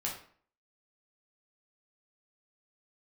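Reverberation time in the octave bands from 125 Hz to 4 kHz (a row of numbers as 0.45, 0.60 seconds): 0.50, 0.55, 0.50, 0.50, 0.45, 0.35 seconds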